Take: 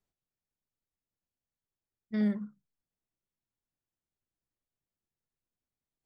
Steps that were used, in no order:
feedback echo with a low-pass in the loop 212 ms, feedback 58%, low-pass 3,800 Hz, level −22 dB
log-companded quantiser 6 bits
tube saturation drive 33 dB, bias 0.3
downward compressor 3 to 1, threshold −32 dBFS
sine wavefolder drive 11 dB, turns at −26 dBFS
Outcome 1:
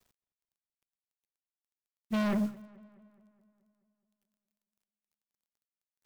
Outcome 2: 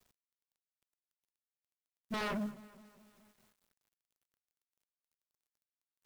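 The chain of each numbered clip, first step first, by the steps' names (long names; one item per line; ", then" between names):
tube saturation, then downward compressor, then sine wavefolder, then log-companded quantiser, then feedback echo with a low-pass in the loop
sine wavefolder, then downward compressor, then feedback echo with a low-pass in the loop, then tube saturation, then log-companded quantiser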